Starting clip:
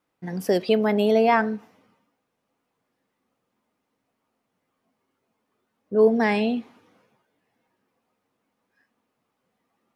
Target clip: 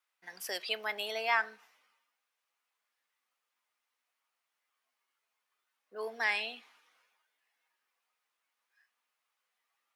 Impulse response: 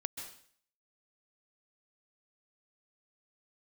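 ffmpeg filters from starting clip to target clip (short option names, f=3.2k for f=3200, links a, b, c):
-af "highpass=1.5k,volume=-1.5dB"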